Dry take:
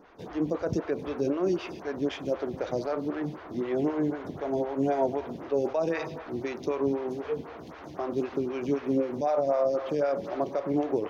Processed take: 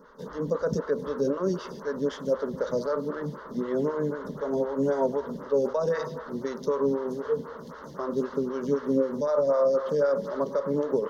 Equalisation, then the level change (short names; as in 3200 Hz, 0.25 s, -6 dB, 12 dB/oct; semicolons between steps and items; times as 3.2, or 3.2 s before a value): fixed phaser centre 490 Hz, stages 8; +5.0 dB